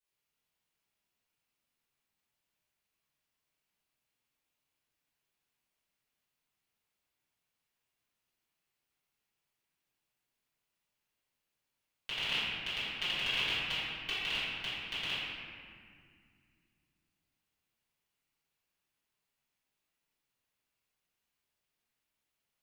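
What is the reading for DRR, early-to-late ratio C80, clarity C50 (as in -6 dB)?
-14.0 dB, -1.5 dB, -3.5 dB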